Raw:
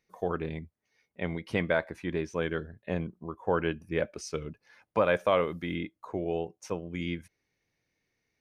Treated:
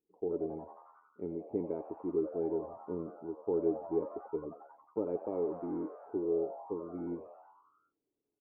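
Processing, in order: cascade formant filter u; small resonant body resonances 420/1300 Hz, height 16 dB; frequency-shifting echo 90 ms, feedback 65%, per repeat +130 Hz, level -13.5 dB; trim -1.5 dB

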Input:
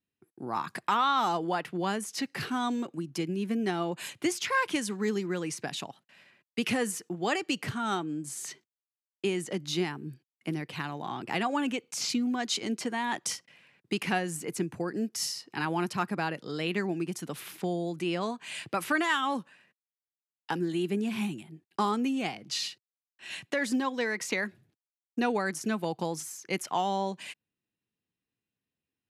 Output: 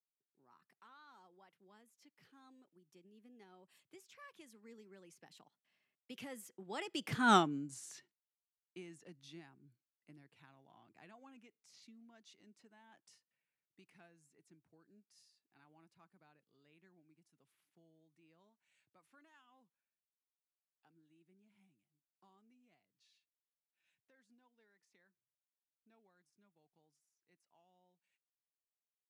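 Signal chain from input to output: Doppler pass-by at 7.32 s, 25 m/s, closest 1.6 m; trim +5 dB

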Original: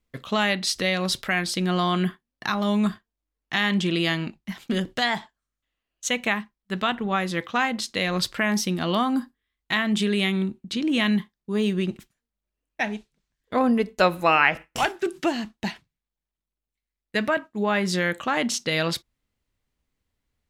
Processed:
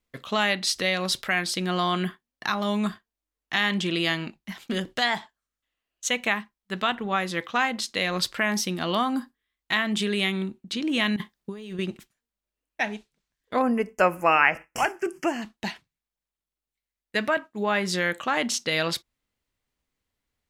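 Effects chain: bass shelf 260 Hz -7 dB; 11.16–11.79 s: compressor with a negative ratio -36 dBFS, ratio -1; 13.62–15.42 s: Butterworth band-stop 3.8 kHz, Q 1.6

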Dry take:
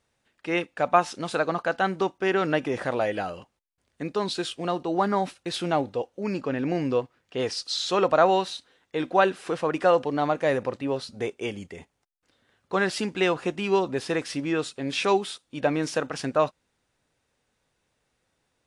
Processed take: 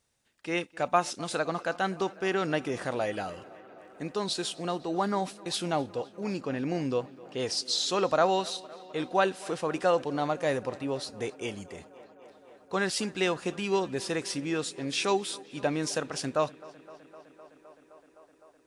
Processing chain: tone controls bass +2 dB, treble +9 dB; tape echo 257 ms, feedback 89%, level -21 dB, low-pass 4.7 kHz; trim -5 dB

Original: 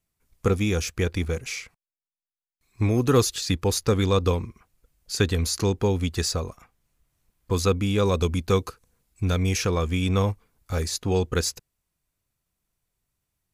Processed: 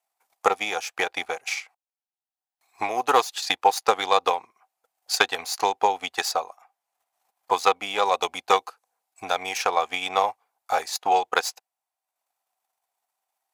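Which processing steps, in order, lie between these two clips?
self-modulated delay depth 0.063 ms; dynamic bell 2.7 kHz, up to +4 dB, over -42 dBFS, Q 0.83; transient shaper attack +7 dB, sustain -7 dB; resonant high-pass 770 Hz, resonance Q 7.3; trim -1 dB

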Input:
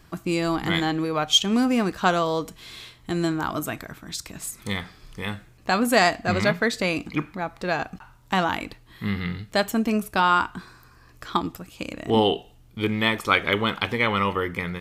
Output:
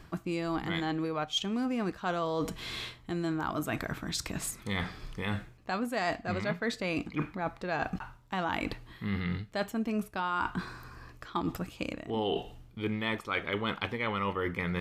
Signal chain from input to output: treble shelf 5.1 kHz -9 dB; reverse; compression 6:1, threshold -35 dBFS, peak gain reduction 19.5 dB; reverse; trim +5 dB

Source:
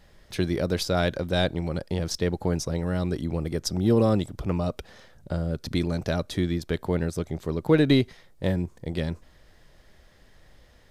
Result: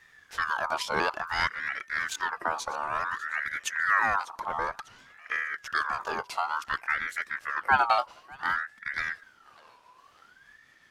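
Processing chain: sawtooth pitch modulation -3 st, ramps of 998 ms; thinning echo 598 ms, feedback 45%, high-pass 620 Hz, level -18.5 dB; ring modulator with a swept carrier 1.4 kHz, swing 30%, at 0.56 Hz

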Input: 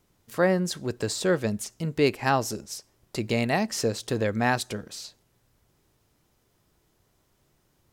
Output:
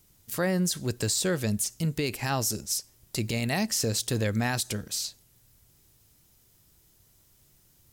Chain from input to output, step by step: FFT filter 100 Hz 0 dB, 420 Hz -8 dB, 1.1 kHz -8 dB, 14 kHz +9 dB; peak limiter -22.5 dBFS, peak gain reduction 9 dB; trim +5 dB

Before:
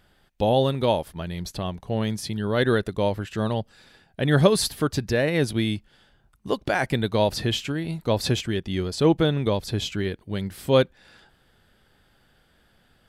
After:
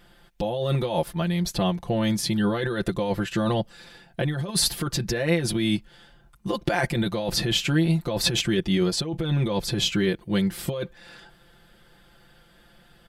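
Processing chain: compressor with a negative ratio -26 dBFS, ratio -1; comb 5.8 ms, depth 89%

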